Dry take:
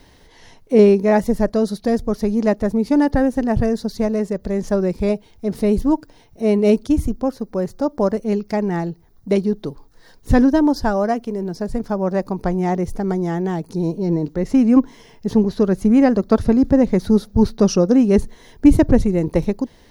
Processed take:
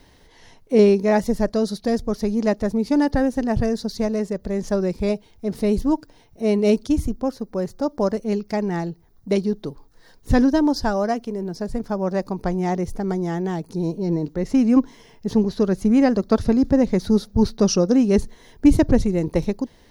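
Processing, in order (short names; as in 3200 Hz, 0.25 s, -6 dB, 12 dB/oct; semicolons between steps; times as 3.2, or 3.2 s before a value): dynamic EQ 5000 Hz, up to +6 dB, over -43 dBFS, Q 0.87; gain -3 dB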